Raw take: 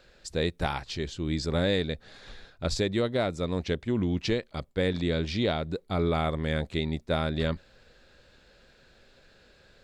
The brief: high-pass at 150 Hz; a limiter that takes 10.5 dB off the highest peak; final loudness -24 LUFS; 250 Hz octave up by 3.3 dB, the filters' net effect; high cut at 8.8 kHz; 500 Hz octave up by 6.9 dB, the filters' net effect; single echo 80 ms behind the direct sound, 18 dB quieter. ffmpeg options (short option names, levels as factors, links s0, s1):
-af "highpass=150,lowpass=8800,equalizer=f=250:t=o:g=3,equalizer=f=500:t=o:g=7.5,alimiter=limit=0.112:level=0:latency=1,aecho=1:1:80:0.126,volume=2.11"